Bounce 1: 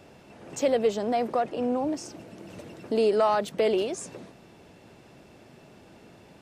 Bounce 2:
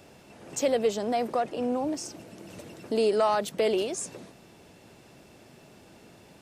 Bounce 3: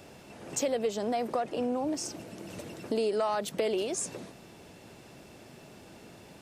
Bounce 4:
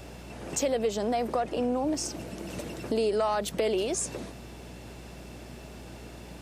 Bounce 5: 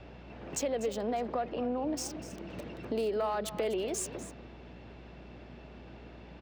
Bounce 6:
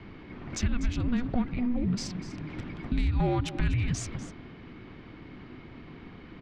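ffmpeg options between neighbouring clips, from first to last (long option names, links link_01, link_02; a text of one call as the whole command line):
ffmpeg -i in.wav -af "highshelf=frequency=5000:gain=8.5,volume=-1.5dB" out.wav
ffmpeg -i in.wav -af "acompressor=threshold=-30dB:ratio=3,volume=2dB" out.wav
ffmpeg -i in.wav -filter_complex "[0:a]asplit=2[link_01][link_02];[link_02]alimiter=level_in=5dB:limit=-24dB:level=0:latency=1:release=180,volume=-5dB,volume=-3dB[link_03];[link_01][link_03]amix=inputs=2:normalize=0,aeval=exprs='val(0)+0.00501*(sin(2*PI*60*n/s)+sin(2*PI*2*60*n/s)/2+sin(2*PI*3*60*n/s)/3+sin(2*PI*4*60*n/s)/4+sin(2*PI*5*60*n/s)/5)':channel_layout=same" out.wav
ffmpeg -i in.wav -filter_complex "[0:a]acrossover=split=420|1300|4100[link_01][link_02][link_03][link_04];[link_04]acrusher=bits=5:mix=0:aa=0.5[link_05];[link_01][link_02][link_03][link_05]amix=inputs=4:normalize=0,aecho=1:1:246:0.2,volume=-5dB" out.wav
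ffmpeg -i in.wav -af "highpass=160,lowpass=4900,afreqshift=-490,volume=6dB" out.wav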